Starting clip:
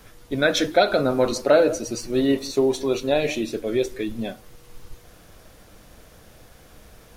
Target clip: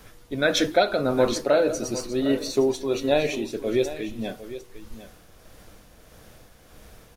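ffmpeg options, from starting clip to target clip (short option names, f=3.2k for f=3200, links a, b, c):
-filter_complex "[0:a]tremolo=f=1.6:d=0.39,asplit=2[a][b];[b]aecho=0:1:755:0.2[c];[a][c]amix=inputs=2:normalize=0"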